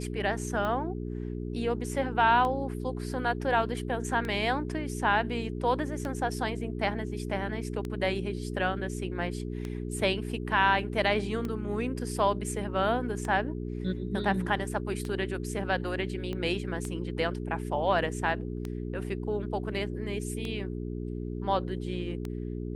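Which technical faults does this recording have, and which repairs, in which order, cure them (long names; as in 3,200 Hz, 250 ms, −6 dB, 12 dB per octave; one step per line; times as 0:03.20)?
mains hum 60 Hz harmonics 7 −35 dBFS
scratch tick 33 1/3 rpm −21 dBFS
0:16.33: click −23 dBFS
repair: click removal
hum removal 60 Hz, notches 7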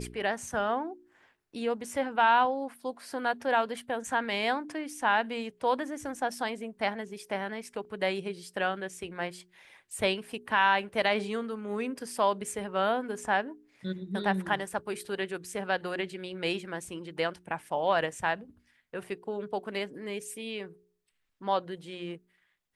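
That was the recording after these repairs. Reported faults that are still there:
0:16.33: click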